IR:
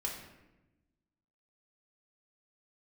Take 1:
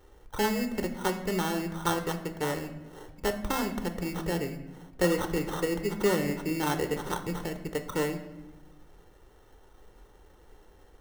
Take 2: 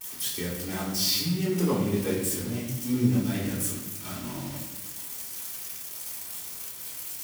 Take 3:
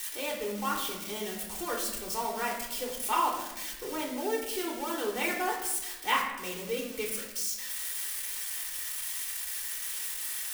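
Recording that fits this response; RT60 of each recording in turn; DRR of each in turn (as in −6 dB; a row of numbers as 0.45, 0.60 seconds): 3; 1.0, 1.0, 1.0 seconds; 6.0, −11.5, −2.5 decibels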